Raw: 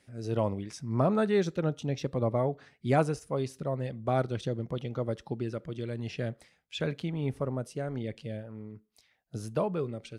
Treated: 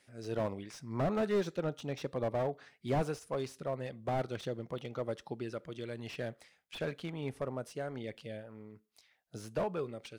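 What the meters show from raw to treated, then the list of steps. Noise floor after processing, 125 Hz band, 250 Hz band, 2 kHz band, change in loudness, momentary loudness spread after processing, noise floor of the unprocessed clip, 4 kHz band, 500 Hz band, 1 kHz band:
-72 dBFS, -8.5 dB, -6.5 dB, -3.5 dB, -5.5 dB, 12 LU, -70 dBFS, -4.0 dB, -4.5 dB, -5.0 dB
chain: low shelf 310 Hz -11.5 dB; slew limiter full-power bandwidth 23 Hz

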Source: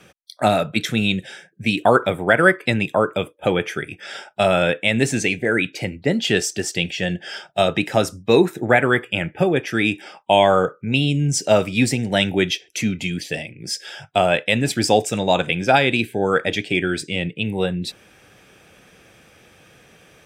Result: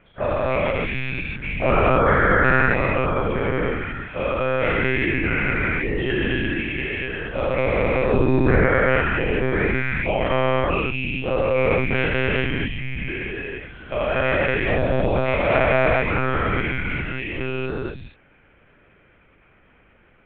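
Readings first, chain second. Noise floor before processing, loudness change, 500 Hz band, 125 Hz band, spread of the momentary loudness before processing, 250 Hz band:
-53 dBFS, -1.5 dB, -1.5 dB, +0.5 dB, 11 LU, -3.5 dB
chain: spectral dilation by 0.48 s; mistuned SSB -100 Hz 170–2800 Hz; monotone LPC vocoder at 8 kHz 130 Hz; gain -9.5 dB

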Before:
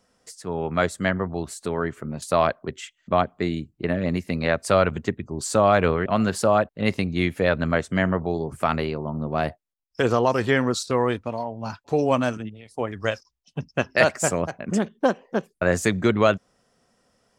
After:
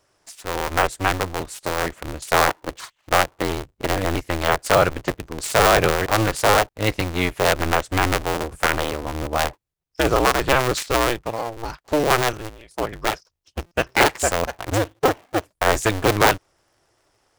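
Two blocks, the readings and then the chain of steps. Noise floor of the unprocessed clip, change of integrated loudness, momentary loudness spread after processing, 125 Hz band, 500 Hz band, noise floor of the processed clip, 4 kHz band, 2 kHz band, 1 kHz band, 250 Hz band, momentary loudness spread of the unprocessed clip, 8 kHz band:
-73 dBFS, +2.5 dB, 12 LU, +0.5 dB, +0.5 dB, -72 dBFS, +8.5 dB, +5.0 dB, +5.0 dB, -2.0 dB, 11 LU, +6.0 dB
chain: cycle switcher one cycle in 2, inverted; bell 220 Hz -9.5 dB 0.67 oct; in parallel at -11 dB: bit-crush 4-bit; on the sum: de-esser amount 35%; stuck buffer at 13.66, samples 256, times 8; gain +1.5 dB

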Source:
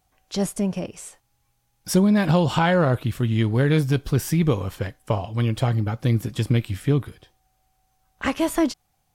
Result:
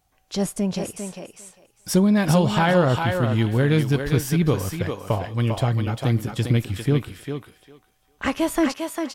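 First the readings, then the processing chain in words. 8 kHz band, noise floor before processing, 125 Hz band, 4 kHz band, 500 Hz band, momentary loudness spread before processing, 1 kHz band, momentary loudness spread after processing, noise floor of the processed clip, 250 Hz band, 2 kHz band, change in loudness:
+1.5 dB, -69 dBFS, 0.0 dB, +1.5 dB, +1.0 dB, 13 LU, +1.5 dB, 14 LU, -65 dBFS, +0.5 dB, +1.5 dB, +0.5 dB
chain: thinning echo 0.4 s, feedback 17%, high-pass 360 Hz, level -4 dB

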